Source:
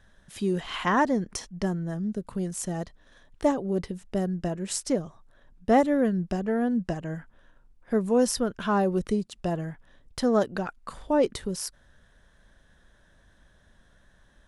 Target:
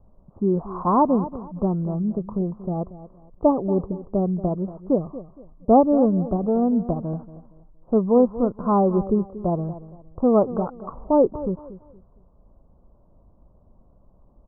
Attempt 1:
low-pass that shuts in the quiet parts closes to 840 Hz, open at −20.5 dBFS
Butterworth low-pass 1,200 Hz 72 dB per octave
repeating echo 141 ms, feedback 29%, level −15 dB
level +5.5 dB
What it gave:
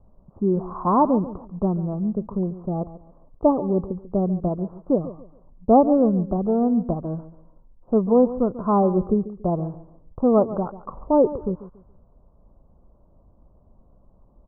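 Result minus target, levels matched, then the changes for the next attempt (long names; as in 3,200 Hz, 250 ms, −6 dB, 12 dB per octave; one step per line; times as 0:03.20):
echo 92 ms early
change: repeating echo 233 ms, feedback 29%, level −15 dB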